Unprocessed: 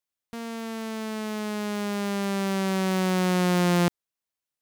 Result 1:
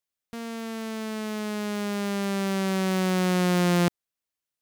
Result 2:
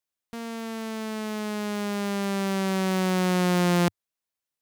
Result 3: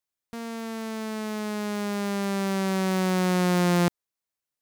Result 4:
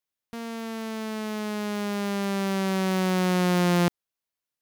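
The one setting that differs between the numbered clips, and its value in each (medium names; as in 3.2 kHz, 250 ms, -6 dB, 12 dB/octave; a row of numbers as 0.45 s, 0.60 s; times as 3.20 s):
peaking EQ, frequency: 910 Hz, 100 Hz, 3 kHz, 8.1 kHz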